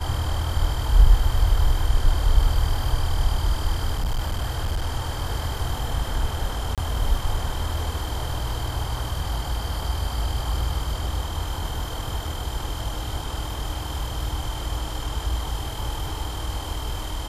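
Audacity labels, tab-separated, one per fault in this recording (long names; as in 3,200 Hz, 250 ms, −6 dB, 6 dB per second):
3.910000	4.900000	clipping −20 dBFS
6.750000	6.780000	drop-out 27 ms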